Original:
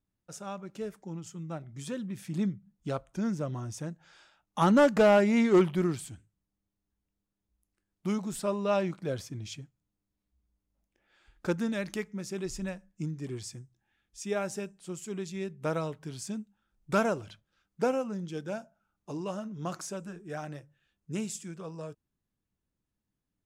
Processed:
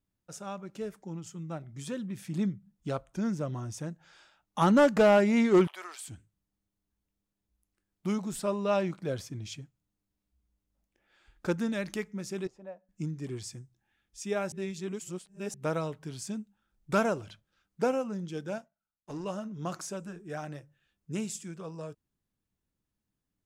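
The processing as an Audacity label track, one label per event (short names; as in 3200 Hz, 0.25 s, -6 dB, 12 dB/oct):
5.670000	6.080000	HPF 690 Hz 24 dB/oct
12.470000	12.890000	band-pass 640 Hz, Q 2.4
14.520000	15.540000	reverse
18.580000	19.250000	power-law curve exponent 1.4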